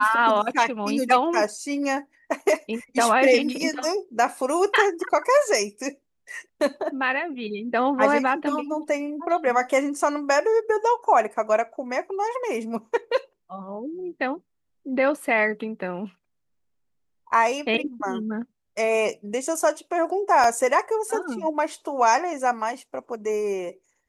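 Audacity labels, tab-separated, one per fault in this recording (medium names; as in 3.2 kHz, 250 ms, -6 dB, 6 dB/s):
20.440000	20.440000	dropout 2.3 ms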